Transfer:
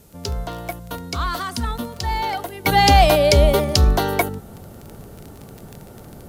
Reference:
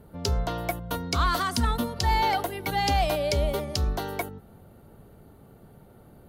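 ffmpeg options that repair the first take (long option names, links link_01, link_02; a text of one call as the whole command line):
ffmpeg -i in.wav -af "adeclick=threshold=4,agate=range=-21dB:threshold=-33dB,asetnsamples=nb_out_samples=441:pad=0,asendcmd='2.65 volume volume -11.5dB',volume=0dB" out.wav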